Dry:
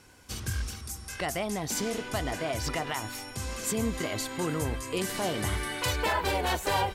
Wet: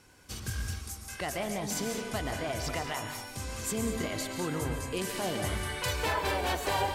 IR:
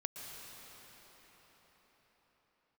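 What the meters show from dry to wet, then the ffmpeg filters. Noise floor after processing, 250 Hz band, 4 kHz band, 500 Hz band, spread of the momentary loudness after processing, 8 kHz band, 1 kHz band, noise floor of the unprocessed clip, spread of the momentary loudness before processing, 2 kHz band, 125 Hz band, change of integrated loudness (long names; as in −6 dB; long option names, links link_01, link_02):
−46 dBFS, −2.0 dB, −2.0 dB, −2.0 dB, 8 LU, −2.0 dB, −2.0 dB, −44 dBFS, 9 LU, −2.0 dB, −2.0 dB, −2.0 dB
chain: -filter_complex "[1:a]atrim=start_sample=2205,afade=type=out:start_time=0.28:duration=0.01,atrim=end_sample=12789[link_01];[0:a][link_01]afir=irnorm=-1:irlink=0"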